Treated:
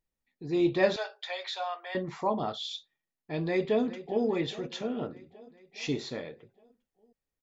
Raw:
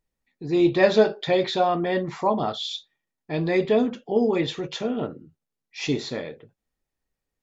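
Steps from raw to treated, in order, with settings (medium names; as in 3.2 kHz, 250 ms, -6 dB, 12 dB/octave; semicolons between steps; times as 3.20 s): 0.96–1.95 s: Bessel high-pass 1 kHz, order 8; 3.45–4.25 s: echo throw 410 ms, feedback 65%, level -15.5 dB; trim -6.5 dB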